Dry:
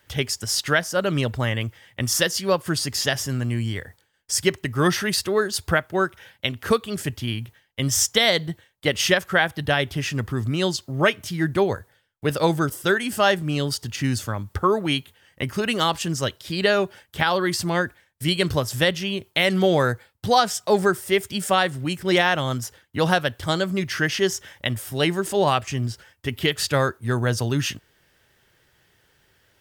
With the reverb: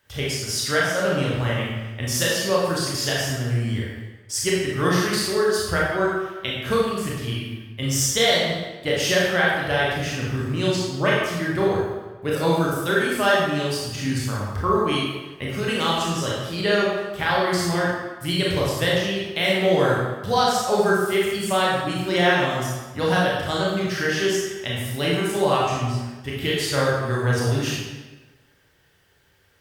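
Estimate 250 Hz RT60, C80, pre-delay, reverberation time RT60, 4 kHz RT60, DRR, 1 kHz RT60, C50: 1.2 s, 2.0 dB, 23 ms, 1.2 s, 0.95 s, −5.5 dB, 1.2 s, −1.0 dB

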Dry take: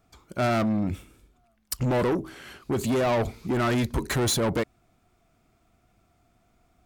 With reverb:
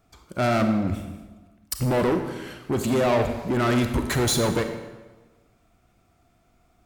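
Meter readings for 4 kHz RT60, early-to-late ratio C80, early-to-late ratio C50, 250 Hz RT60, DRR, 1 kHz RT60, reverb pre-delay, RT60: 0.95 s, 9.0 dB, 7.5 dB, 1.3 s, 6.0 dB, 1.2 s, 29 ms, 1.2 s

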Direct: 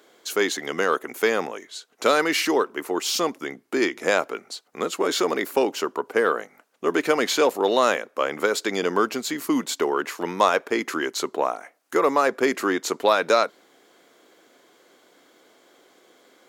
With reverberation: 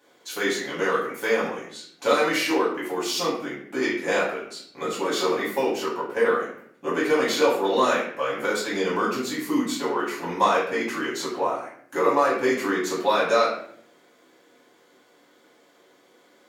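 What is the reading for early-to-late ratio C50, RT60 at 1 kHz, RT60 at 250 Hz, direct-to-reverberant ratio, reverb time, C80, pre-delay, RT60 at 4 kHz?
3.5 dB, 0.55 s, 0.95 s, −8.5 dB, 0.65 s, 7.5 dB, 3 ms, 0.50 s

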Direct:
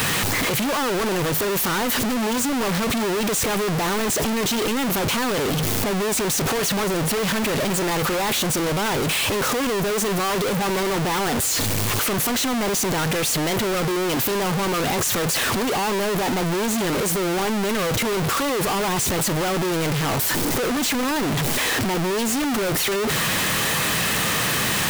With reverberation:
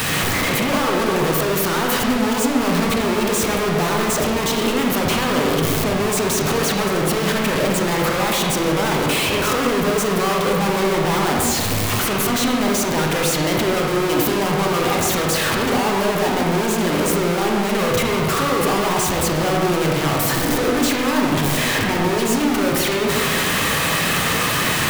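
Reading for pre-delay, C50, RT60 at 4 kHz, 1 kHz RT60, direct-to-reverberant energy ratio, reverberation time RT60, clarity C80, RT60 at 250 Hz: 30 ms, 0.5 dB, 1.2 s, 1.7 s, −1.0 dB, 1.7 s, 2.5 dB, 1.8 s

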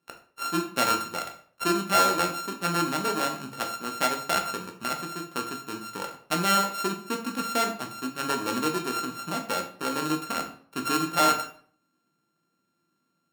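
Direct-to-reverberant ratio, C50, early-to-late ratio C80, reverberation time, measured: 3.0 dB, 9.5 dB, 13.5 dB, 0.55 s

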